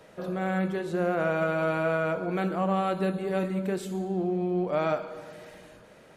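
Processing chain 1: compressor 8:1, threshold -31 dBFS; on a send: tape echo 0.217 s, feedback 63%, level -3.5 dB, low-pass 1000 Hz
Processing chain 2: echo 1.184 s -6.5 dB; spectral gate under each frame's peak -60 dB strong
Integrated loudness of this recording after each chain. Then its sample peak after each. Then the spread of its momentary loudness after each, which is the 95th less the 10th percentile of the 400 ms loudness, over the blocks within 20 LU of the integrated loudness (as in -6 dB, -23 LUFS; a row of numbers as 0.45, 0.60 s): -34.0, -28.5 LUFS; -21.5, -15.0 dBFS; 7, 8 LU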